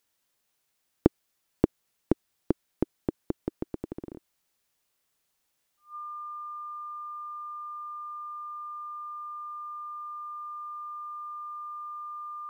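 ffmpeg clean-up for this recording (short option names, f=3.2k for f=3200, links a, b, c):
-af "bandreject=f=1.2k:w=30"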